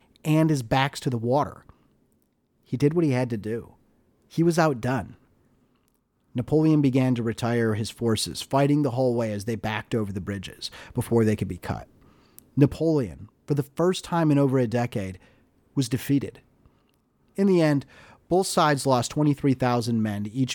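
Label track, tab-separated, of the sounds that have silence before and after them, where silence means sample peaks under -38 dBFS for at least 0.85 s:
2.730000	5.120000	sound
6.360000	16.360000	sound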